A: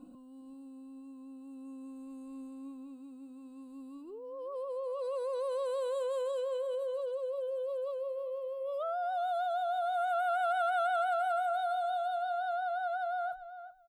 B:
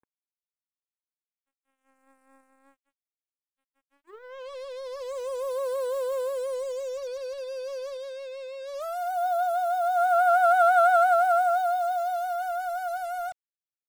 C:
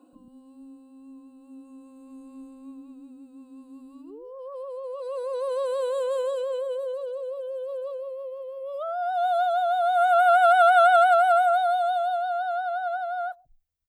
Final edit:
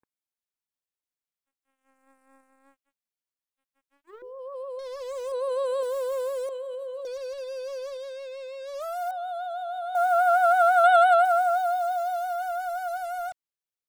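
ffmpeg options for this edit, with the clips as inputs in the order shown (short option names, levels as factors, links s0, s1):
-filter_complex "[2:a]asplit=3[s0][s1][s2];[0:a]asplit=2[s3][s4];[1:a]asplit=6[s5][s6][s7][s8][s9][s10];[s5]atrim=end=4.222[s11];[s0]atrim=start=4.218:end=4.792[s12];[s6]atrim=start=4.788:end=5.322[s13];[s1]atrim=start=5.318:end=5.832[s14];[s7]atrim=start=5.828:end=6.492[s15];[s3]atrim=start=6.488:end=7.052[s16];[s8]atrim=start=7.048:end=9.112[s17];[s4]atrim=start=9.108:end=9.952[s18];[s9]atrim=start=9.948:end=10.842[s19];[s2]atrim=start=10.838:end=11.252[s20];[s10]atrim=start=11.248[s21];[s11][s12]acrossfade=d=0.004:c1=hsin:c2=hsin[s22];[s22][s13]acrossfade=d=0.004:c1=hsin:c2=hsin[s23];[s23][s14]acrossfade=d=0.004:c1=hsin:c2=hsin[s24];[s24][s15]acrossfade=d=0.004:c1=hsin:c2=hsin[s25];[s25][s16]acrossfade=d=0.004:c1=hsin:c2=hsin[s26];[s26][s17]acrossfade=d=0.004:c1=hsin:c2=hsin[s27];[s27][s18]acrossfade=d=0.004:c1=hsin:c2=hsin[s28];[s28][s19]acrossfade=d=0.004:c1=hsin:c2=hsin[s29];[s29][s20]acrossfade=d=0.004:c1=hsin:c2=hsin[s30];[s30][s21]acrossfade=d=0.004:c1=hsin:c2=hsin"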